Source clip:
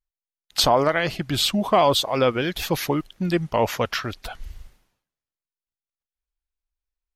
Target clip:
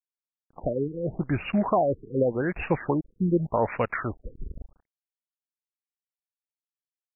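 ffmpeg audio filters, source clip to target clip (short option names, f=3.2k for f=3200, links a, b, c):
-af "alimiter=limit=-12dB:level=0:latency=1:release=264,acrusher=bits=7:dc=4:mix=0:aa=0.000001,afftfilt=real='re*lt(b*sr/1024,460*pow(2900/460,0.5+0.5*sin(2*PI*0.85*pts/sr)))':imag='im*lt(b*sr/1024,460*pow(2900/460,0.5+0.5*sin(2*PI*0.85*pts/sr)))':win_size=1024:overlap=0.75"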